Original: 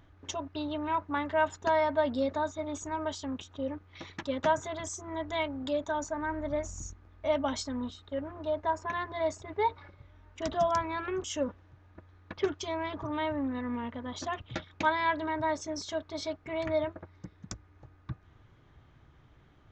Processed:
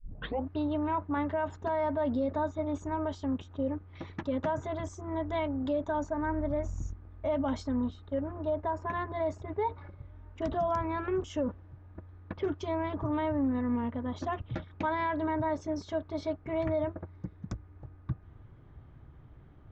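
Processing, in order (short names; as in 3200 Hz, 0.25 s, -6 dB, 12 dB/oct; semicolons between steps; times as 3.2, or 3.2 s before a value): tape start at the beginning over 0.47 s; LPF 1000 Hz 6 dB/oct; low shelf 210 Hz +5 dB; limiter -25.5 dBFS, peak gain reduction 8.5 dB; gain +3 dB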